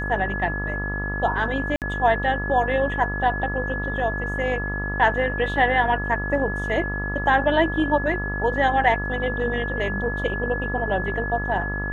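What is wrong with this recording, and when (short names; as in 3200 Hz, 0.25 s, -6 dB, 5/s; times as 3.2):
buzz 50 Hz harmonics 28 -29 dBFS
tone 1700 Hz -28 dBFS
1.76–1.82 gap 58 ms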